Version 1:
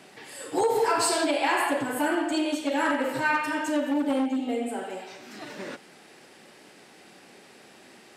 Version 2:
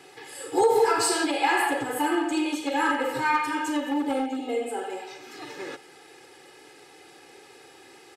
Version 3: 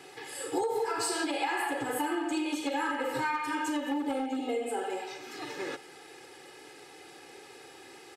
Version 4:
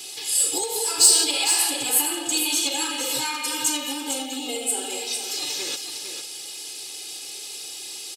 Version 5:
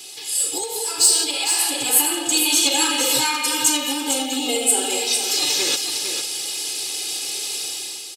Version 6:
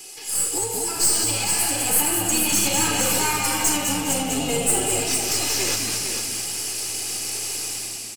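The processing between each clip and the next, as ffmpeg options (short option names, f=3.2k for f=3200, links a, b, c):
-af "aecho=1:1:2.4:0.93,volume=-1.5dB"
-af "acompressor=threshold=-28dB:ratio=6"
-filter_complex "[0:a]aexciter=amount=4.9:drive=9.7:freq=2.7k,asplit=2[a][b];[b]aecho=0:1:455:0.422[c];[a][c]amix=inputs=2:normalize=0,volume=-1.5dB"
-af "dynaudnorm=f=150:g=7:m=10dB,volume=-1dB"
-filter_complex "[0:a]aeval=exprs='(tanh(6.31*val(0)+0.5)-tanh(0.5))/6.31':c=same,equalizer=f=3.7k:w=3.1:g=-13.5,asplit=5[a][b][c][d][e];[b]adelay=202,afreqshift=-110,volume=-6dB[f];[c]adelay=404,afreqshift=-220,volume=-15.1dB[g];[d]adelay=606,afreqshift=-330,volume=-24.2dB[h];[e]adelay=808,afreqshift=-440,volume=-33.4dB[i];[a][f][g][h][i]amix=inputs=5:normalize=0,volume=2dB"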